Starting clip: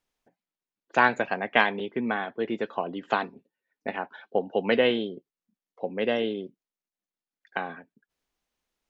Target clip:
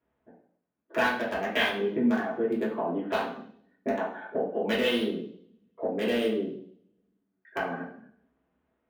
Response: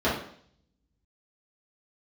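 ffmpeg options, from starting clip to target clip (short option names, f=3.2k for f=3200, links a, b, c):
-filter_complex "[0:a]acrossover=split=2600[a][b];[a]acompressor=threshold=-37dB:ratio=6[c];[b]acrusher=bits=5:mix=0:aa=0.000001[d];[c][d]amix=inputs=2:normalize=0[e];[1:a]atrim=start_sample=2205[f];[e][f]afir=irnorm=-1:irlink=0,volume=-6.5dB"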